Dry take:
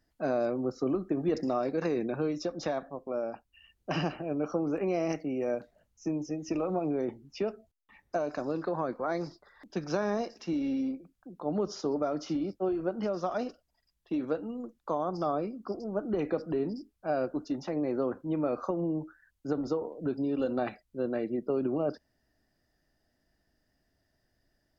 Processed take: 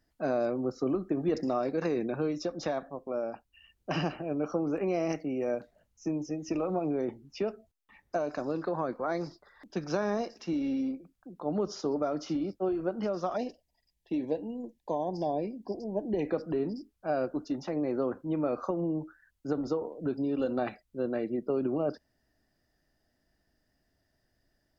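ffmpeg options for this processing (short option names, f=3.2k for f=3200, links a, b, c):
-filter_complex "[0:a]asettb=1/sr,asplit=3[a][b][c];[a]atrim=end=13.364[d];[b]atrim=start=13.36:end=16.28,asetpts=PTS-STARTPTS,afade=t=in:d=0.004:c=qsin,afade=t=out:st=2.916:d=0.004:c=qsin,asuperstop=centerf=1300:order=8:qfactor=1.9[e];[c]atrim=start=16.276[f];[d][e]acrossfade=d=0.004:c1=hsin:c2=qsin[g];[g][f]acrossfade=d=0.004:c1=qsin:c2=hsin"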